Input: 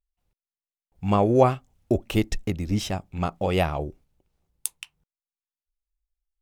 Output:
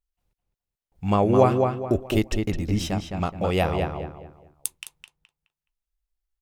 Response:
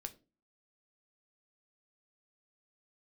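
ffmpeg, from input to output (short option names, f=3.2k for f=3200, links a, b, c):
-filter_complex "[0:a]asplit=2[a][b];[b]adelay=211,lowpass=f=3k:p=1,volume=-4.5dB,asplit=2[c][d];[d]adelay=211,lowpass=f=3k:p=1,volume=0.32,asplit=2[e][f];[f]adelay=211,lowpass=f=3k:p=1,volume=0.32,asplit=2[g][h];[h]adelay=211,lowpass=f=3k:p=1,volume=0.32[i];[a][c][e][g][i]amix=inputs=5:normalize=0"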